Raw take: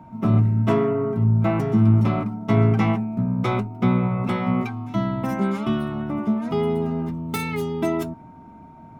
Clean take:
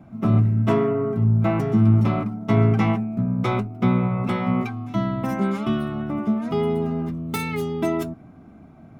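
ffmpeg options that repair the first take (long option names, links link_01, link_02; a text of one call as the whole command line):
ffmpeg -i in.wav -af "bandreject=frequency=920:width=30" out.wav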